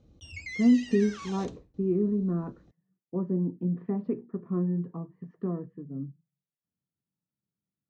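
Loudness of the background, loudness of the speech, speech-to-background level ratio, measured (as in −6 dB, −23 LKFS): −41.5 LKFS, −29.5 LKFS, 12.0 dB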